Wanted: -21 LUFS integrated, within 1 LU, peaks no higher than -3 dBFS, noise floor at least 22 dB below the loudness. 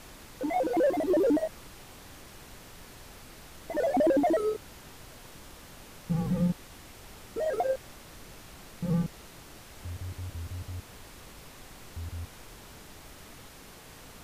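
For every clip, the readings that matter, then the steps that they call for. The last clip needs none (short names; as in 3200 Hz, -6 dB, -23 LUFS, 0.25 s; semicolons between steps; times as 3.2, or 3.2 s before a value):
clipped 0.3%; flat tops at -19.5 dBFS; noise floor -50 dBFS; noise floor target -52 dBFS; loudness -30.0 LUFS; peak -19.5 dBFS; loudness target -21.0 LUFS
-> clip repair -19.5 dBFS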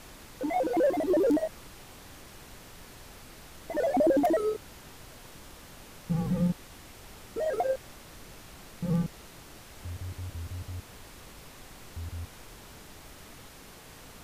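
clipped 0.0%; noise floor -50 dBFS; noise floor target -52 dBFS
-> noise print and reduce 6 dB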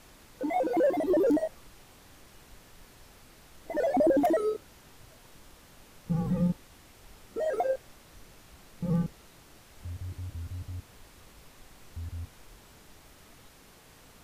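noise floor -56 dBFS; loudness -30.0 LUFS; peak -14.0 dBFS; loudness target -21.0 LUFS
-> gain +9 dB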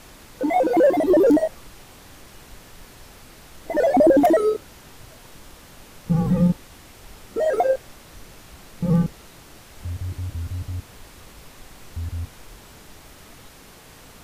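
loudness -21.0 LUFS; peak -5.0 dBFS; noise floor -47 dBFS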